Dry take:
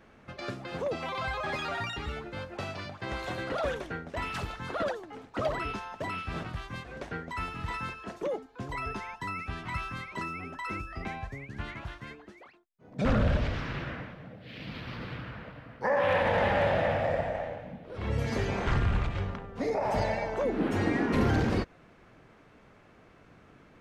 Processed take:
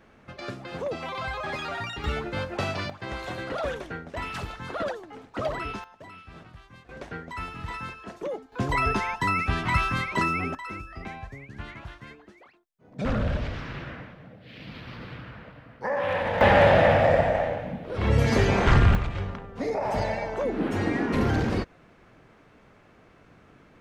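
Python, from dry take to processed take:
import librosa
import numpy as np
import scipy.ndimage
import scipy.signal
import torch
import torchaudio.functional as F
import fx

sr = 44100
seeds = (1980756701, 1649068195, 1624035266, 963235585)

y = fx.gain(x, sr, db=fx.steps((0.0, 1.0), (2.04, 8.0), (2.9, 1.0), (5.84, -10.5), (6.89, 0.0), (8.52, 11.0), (10.55, -1.0), (16.41, 9.0), (18.95, 1.5)))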